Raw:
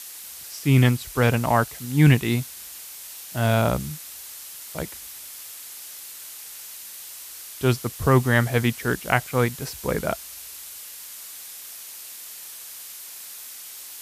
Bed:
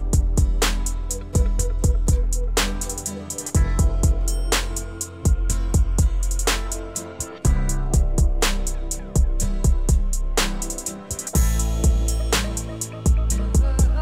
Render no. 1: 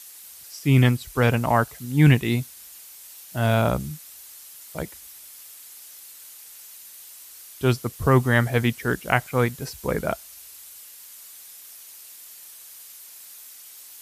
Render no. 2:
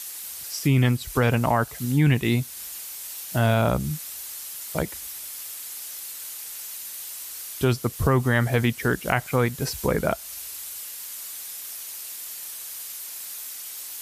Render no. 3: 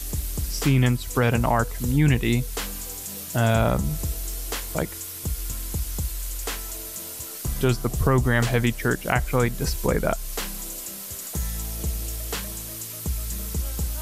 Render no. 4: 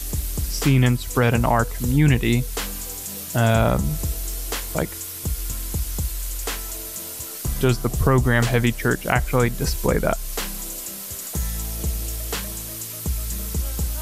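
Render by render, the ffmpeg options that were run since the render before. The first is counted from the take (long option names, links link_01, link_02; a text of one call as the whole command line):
ffmpeg -i in.wav -af "afftdn=noise_reduction=7:noise_floor=-40" out.wav
ffmpeg -i in.wav -filter_complex "[0:a]asplit=2[link_01][link_02];[link_02]alimiter=limit=-13.5dB:level=0:latency=1:release=22,volume=3dB[link_03];[link_01][link_03]amix=inputs=2:normalize=0,acompressor=threshold=-23dB:ratio=2" out.wav
ffmpeg -i in.wav -i bed.wav -filter_complex "[1:a]volume=-10.5dB[link_01];[0:a][link_01]amix=inputs=2:normalize=0" out.wav
ffmpeg -i in.wav -af "volume=2.5dB" out.wav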